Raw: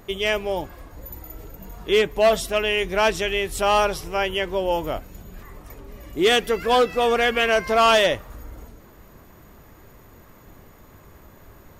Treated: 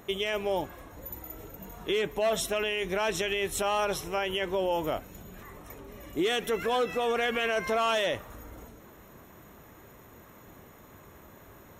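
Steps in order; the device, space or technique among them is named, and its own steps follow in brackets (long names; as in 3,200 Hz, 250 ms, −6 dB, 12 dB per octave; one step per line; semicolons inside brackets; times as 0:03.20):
PA system with an anti-feedback notch (high-pass filter 120 Hz 6 dB per octave; Butterworth band-reject 4,700 Hz, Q 6; brickwall limiter −18.5 dBFS, peak gain reduction 10 dB)
level −1.5 dB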